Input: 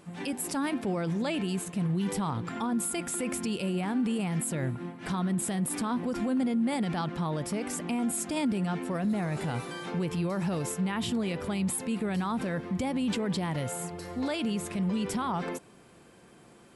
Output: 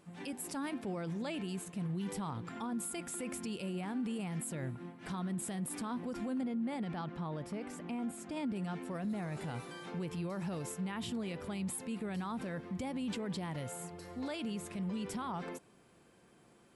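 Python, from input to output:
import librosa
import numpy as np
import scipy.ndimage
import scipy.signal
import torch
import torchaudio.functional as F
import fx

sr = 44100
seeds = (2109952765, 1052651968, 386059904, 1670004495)

y = fx.high_shelf(x, sr, hz=4800.0, db=-11.5, at=(6.41, 8.56))
y = y * librosa.db_to_amplitude(-8.5)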